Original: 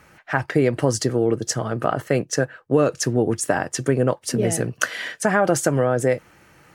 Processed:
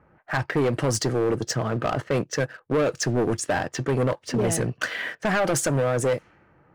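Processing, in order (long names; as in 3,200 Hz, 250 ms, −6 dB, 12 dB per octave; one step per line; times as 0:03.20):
low-pass that shuts in the quiet parts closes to 1,000 Hz, open at −15.5 dBFS
leveller curve on the samples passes 1
soft clipping −15.5 dBFS, distortion −10 dB
level −2 dB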